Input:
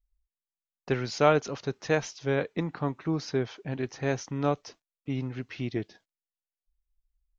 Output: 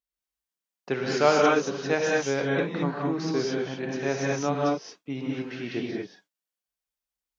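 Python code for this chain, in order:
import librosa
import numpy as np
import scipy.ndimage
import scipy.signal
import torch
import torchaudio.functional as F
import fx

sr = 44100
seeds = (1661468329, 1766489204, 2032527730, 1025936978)

y = scipy.signal.sosfilt(scipy.signal.butter(2, 200.0, 'highpass', fs=sr, output='sos'), x)
y = fx.rev_gated(y, sr, seeds[0], gate_ms=250, shape='rising', drr_db=-3.0)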